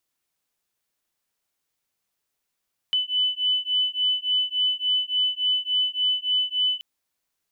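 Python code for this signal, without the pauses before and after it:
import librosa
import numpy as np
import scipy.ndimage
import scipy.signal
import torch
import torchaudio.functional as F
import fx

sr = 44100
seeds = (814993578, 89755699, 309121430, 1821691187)

y = fx.two_tone_beats(sr, length_s=3.88, hz=3000.0, beat_hz=3.5, level_db=-24.0)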